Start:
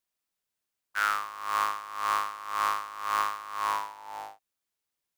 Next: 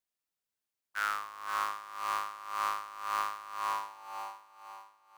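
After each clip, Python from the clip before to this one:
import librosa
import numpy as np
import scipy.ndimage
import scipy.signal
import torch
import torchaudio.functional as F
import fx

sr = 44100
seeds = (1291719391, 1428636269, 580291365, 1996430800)

y = fx.echo_feedback(x, sr, ms=515, feedback_pct=44, wet_db=-9.5)
y = y * librosa.db_to_amplitude(-5.5)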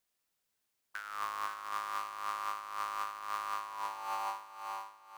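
y = fx.over_compress(x, sr, threshold_db=-42.0, ratio=-1.0)
y = y * librosa.db_to_amplitude(2.5)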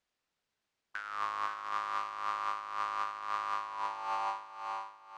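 y = fx.air_absorb(x, sr, metres=110.0)
y = y * librosa.db_to_amplitude(3.0)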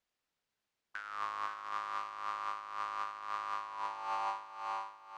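y = fx.rider(x, sr, range_db=10, speed_s=2.0)
y = y * librosa.db_to_amplitude(-3.0)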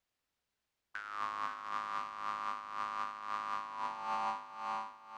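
y = fx.octave_divider(x, sr, octaves=2, level_db=-1.0)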